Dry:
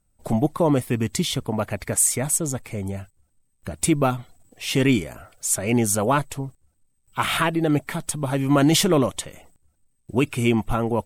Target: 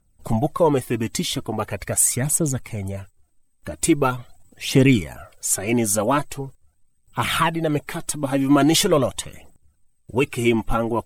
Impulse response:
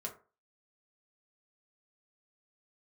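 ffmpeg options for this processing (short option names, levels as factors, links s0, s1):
-af "aphaser=in_gain=1:out_gain=1:delay=3.8:decay=0.5:speed=0.42:type=triangular"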